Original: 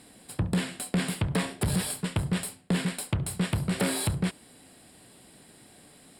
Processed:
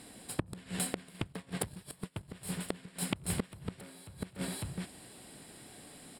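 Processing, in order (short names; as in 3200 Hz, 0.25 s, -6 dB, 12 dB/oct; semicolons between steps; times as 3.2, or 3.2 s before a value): tapped delay 87/173/254/552 ms -18/-13/-16/-13 dB; 1.14–2.28 transient shaper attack +12 dB, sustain -9 dB; flipped gate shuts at -20 dBFS, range -25 dB; gain +1 dB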